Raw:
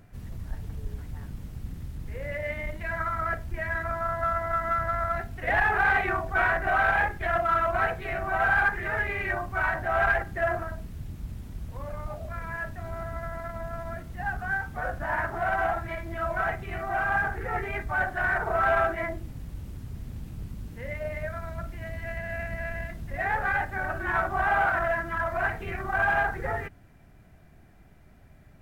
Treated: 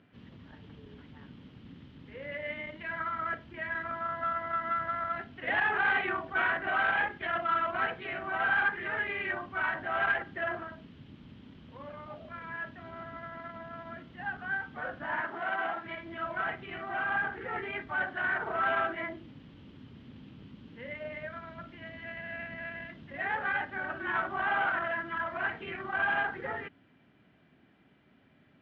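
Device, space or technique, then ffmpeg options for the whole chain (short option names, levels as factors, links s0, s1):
kitchen radio: -filter_complex "[0:a]asettb=1/sr,asplit=3[s0][s1][s2];[s0]atrim=end=15.204[s3];[s1]atrim=start=15.2:end=15.86,asetpts=PTS-STARTPTS,afade=t=in:d=0.004:c=qsin,afade=t=out:st=0.656:d=0.004:c=qsin,highpass=200[s4];[s2]atrim=start=15.856[s5];[s3][s4]acrossfade=d=0.004:c1=hsin:c2=qsin[s6];[s6][s5]acrossfade=d=0.004:c1=qsin:c2=hsin,highpass=190,equalizer=f=260:t=q:w=4:g=6,equalizer=f=700:t=q:w=4:g=-6,equalizer=f=3100:t=q:w=4:g=9,lowpass=f=3900:w=0.5412,lowpass=f=3900:w=1.3066,volume=0.631"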